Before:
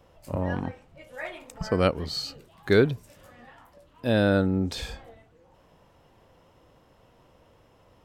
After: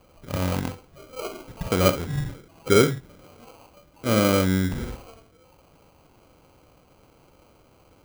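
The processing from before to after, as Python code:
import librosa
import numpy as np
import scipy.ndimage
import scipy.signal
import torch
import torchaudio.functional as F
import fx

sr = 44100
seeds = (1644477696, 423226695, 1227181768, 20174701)

y = fx.freq_compress(x, sr, knee_hz=1200.0, ratio=4.0)
y = fx.room_early_taps(y, sr, ms=(43, 65), db=(-12.0, -13.5))
y = fx.sample_hold(y, sr, seeds[0], rate_hz=1800.0, jitter_pct=0)
y = F.gain(torch.from_numpy(y), 1.5).numpy()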